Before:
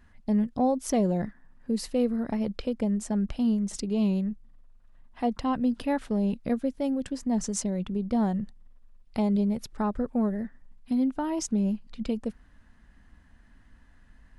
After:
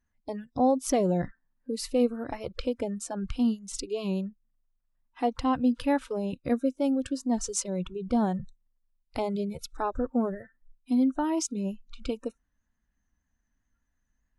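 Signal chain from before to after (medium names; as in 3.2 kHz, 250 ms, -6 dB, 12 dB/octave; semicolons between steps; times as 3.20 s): spectral noise reduction 23 dB; trim +2 dB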